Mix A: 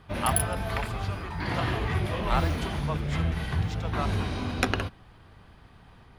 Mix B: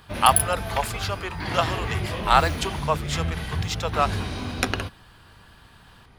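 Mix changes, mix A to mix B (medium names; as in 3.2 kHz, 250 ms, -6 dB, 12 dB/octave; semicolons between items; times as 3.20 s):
speech +11.0 dB; master: add treble shelf 3.7 kHz +7 dB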